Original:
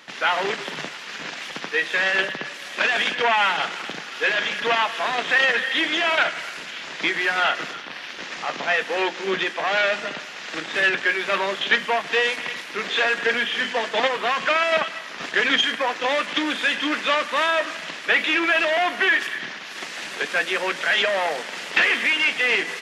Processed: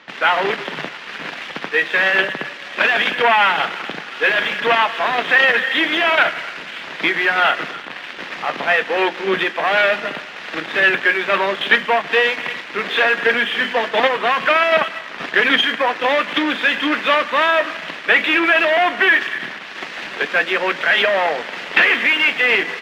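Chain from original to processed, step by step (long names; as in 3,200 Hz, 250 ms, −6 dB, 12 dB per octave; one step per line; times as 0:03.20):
low-pass filter 3,300 Hz 12 dB per octave
in parallel at −7.5 dB: dead-zone distortion −38.5 dBFS
on the sum: level +3 dB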